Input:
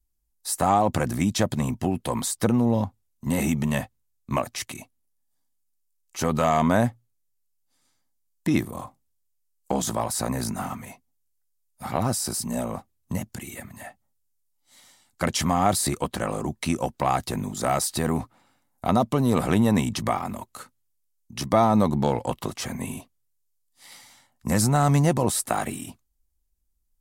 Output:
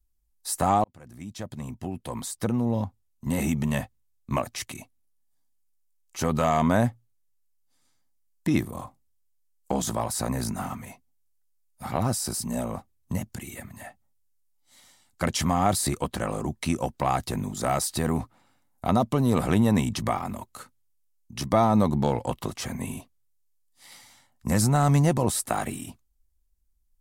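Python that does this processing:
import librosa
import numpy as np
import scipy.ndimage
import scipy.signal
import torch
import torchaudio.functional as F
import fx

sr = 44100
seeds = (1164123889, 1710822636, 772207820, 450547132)

y = fx.edit(x, sr, fx.fade_in_span(start_s=0.84, length_s=3.73, curve='qsin'), tone=tone)
y = fx.low_shelf(y, sr, hz=95.0, db=6.0)
y = F.gain(torch.from_numpy(y), -2.0).numpy()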